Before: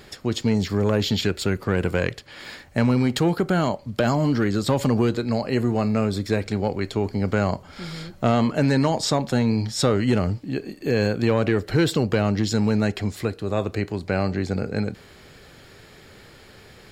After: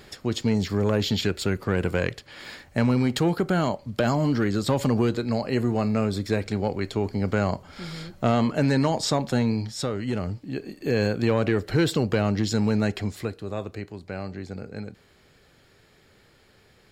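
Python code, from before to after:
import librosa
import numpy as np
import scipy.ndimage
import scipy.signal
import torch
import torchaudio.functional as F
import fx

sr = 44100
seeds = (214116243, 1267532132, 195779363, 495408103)

y = fx.gain(x, sr, db=fx.line((9.43, -2.0), (9.92, -9.0), (10.83, -2.0), (12.96, -2.0), (13.93, -10.5)))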